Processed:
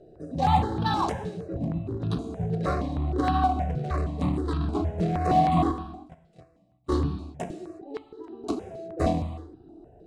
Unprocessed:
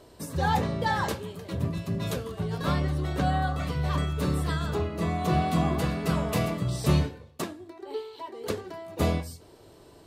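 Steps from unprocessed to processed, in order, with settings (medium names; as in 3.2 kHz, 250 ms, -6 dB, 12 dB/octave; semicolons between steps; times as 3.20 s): local Wiener filter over 41 samples; steep low-pass 9.3 kHz 36 dB/octave; hum notches 50/100/150/200 Hz; 5.71–6.92 s: gate -21 dBFS, range -39 dB; small resonant body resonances 310/720/1100/3900 Hz, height 11 dB, ringing for 45 ms; in parallel at -4 dB: overload inside the chain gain 26 dB; on the sum: gated-style reverb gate 390 ms falling, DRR 7 dB; stepped phaser 6.4 Hz 280–2100 Hz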